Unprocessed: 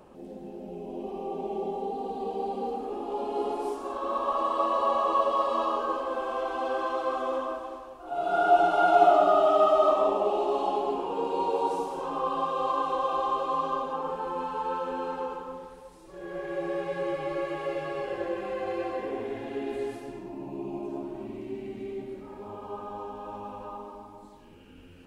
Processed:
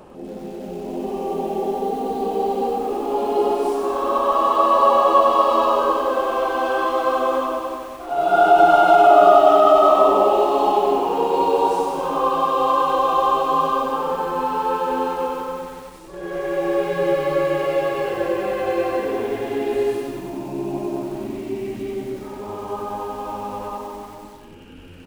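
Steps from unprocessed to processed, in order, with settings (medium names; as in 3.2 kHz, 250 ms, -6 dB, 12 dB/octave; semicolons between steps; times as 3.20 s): on a send: feedback delay 100 ms, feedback 37%, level -12 dB; on the sum: loudness maximiser +13 dB; bit-crushed delay 93 ms, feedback 80%, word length 6-bit, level -10.5 dB; trim -4 dB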